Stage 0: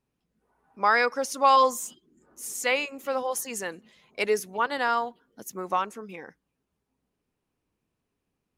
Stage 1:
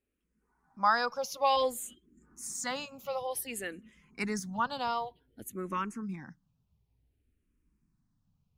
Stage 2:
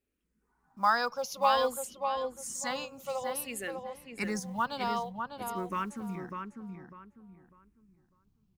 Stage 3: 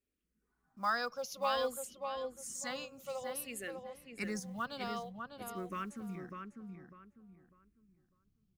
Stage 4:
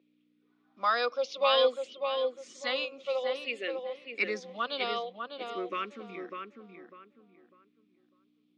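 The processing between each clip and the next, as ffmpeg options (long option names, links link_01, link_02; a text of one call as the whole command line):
ffmpeg -i in.wav -filter_complex "[0:a]asubboost=boost=8.5:cutoff=170,asplit=2[link_01][link_02];[link_02]afreqshift=-0.55[link_03];[link_01][link_03]amix=inputs=2:normalize=1,volume=-2dB" out.wav
ffmpeg -i in.wav -filter_complex "[0:a]acrusher=bits=8:mode=log:mix=0:aa=0.000001,asplit=2[link_01][link_02];[link_02]adelay=599,lowpass=frequency=2000:poles=1,volume=-5dB,asplit=2[link_03][link_04];[link_04]adelay=599,lowpass=frequency=2000:poles=1,volume=0.3,asplit=2[link_05][link_06];[link_06]adelay=599,lowpass=frequency=2000:poles=1,volume=0.3,asplit=2[link_07][link_08];[link_08]adelay=599,lowpass=frequency=2000:poles=1,volume=0.3[link_09];[link_03][link_05][link_07][link_09]amix=inputs=4:normalize=0[link_10];[link_01][link_10]amix=inputs=2:normalize=0" out.wav
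ffmpeg -i in.wav -af "equalizer=frequency=910:width_type=o:width=0.25:gain=-14,volume=-5dB" out.wav
ffmpeg -i in.wav -af "aeval=exprs='val(0)+0.000891*(sin(2*PI*60*n/s)+sin(2*PI*2*60*n/s)/2+sin(2*PI*3*60*n/s)/3+sin(2*PI*4*60*n/s)/4+sin(2*PI*5*60*n/s)/5)':channel_layout=same,highpass=frequency=310:width=0.5412,highpass=frequency=310:width=1.3066,equalizer=frequency=500:width_type=q:width=4:gain=3,equalizer=frequency=870:width_type=q:width=4:gain=-7,equalizer=frequency=1600:width_type=q:width=4:gain=-7,equalizer=frequency=2400:width_type=q:width=4:gain=6,equalizer=frequency=3500:width_type=q:width=4:gain=8,lowpass=frequency=4300:width=0.5412,lowpass=frequency=4300:width=1.3066,volume=8.5dB" out.wav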